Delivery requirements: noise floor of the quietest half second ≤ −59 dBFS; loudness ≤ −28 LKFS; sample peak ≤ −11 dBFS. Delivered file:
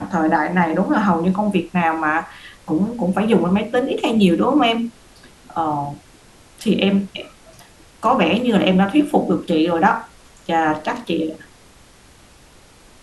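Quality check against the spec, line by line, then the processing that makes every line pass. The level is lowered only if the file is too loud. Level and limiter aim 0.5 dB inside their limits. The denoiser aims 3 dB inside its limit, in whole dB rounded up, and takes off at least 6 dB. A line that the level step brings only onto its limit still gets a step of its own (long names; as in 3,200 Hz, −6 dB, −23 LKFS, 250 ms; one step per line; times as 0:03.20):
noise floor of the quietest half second −48 dBFS: out of spec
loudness −18.5 LKFS: out of spec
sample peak −3.0 dBFS: out of spec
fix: broadband denoise 6 dB, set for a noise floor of −48 dBFS
level −10 dB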